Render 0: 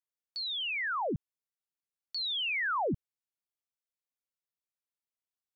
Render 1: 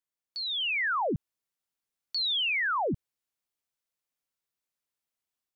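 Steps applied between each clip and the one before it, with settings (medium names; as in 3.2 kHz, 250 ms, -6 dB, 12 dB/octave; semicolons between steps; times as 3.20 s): peak limiter -30 dBFS, peak gain reduction 3.5 dB; level rider gain up to 5 dB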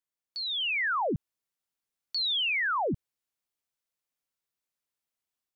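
no audible change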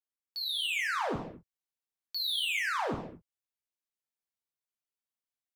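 waveshaping leveller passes 2; gated-style reverb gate 280 ms falling, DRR 1.5 dB; trim -7 dB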